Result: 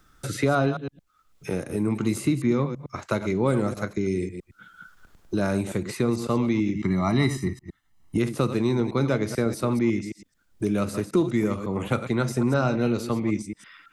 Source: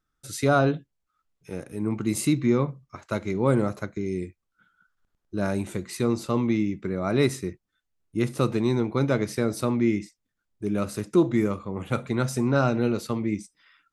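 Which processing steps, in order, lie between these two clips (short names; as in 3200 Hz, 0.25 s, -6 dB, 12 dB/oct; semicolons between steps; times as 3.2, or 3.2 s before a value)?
reverse delay 0.11 s, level -11 dB; 6.75–8.18 comb 1 ms, depth 99%; three-band squash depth 70%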